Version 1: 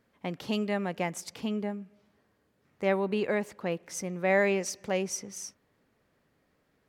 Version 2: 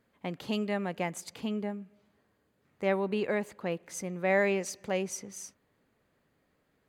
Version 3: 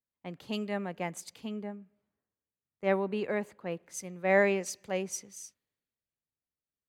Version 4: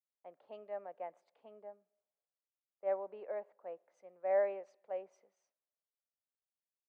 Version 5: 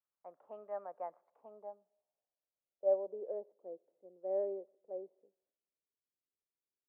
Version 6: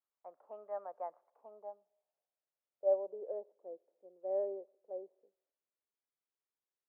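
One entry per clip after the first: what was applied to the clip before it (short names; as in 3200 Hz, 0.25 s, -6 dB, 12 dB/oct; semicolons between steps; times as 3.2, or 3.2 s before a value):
notch 5500 Hz, Q 7.7; gain -1.5 dB
three-band expander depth 70%; gain -2.5 dB
ladder band-pass 700 Hz, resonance 55%
low-pass sweep 1200 Hz -> 390 Hz, 1.15–3.6; gain -1.5 dB
band-pass 830 Hz, Q 0.59; gain +1 dB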